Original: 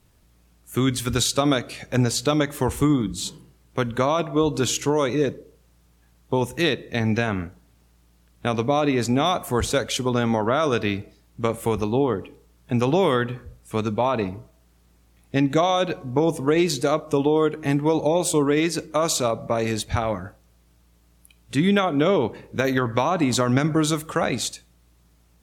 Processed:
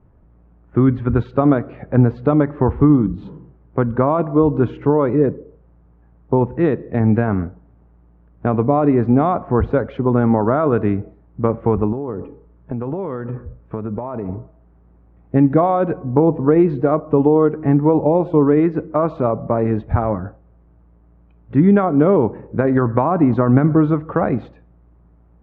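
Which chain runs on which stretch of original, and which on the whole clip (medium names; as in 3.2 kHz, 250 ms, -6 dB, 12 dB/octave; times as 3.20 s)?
11.92–14.29 s: band-stop 760 Hz, Q 15 + compression 12:1, threshold -27 dBFS
whole clip: Bessel low-pass 940 Hz, order 4; dynamic bell 580 Hz, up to -3 dB, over -34 dBFS, Q 1.8; trim +8 dB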